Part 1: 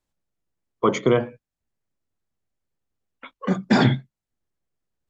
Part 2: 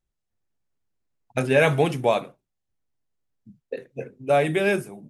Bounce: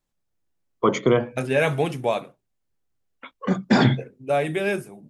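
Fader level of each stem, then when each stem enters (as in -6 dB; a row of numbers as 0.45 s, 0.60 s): 0.0 dB, -2.5 dB; 0.00 s, 0.00 s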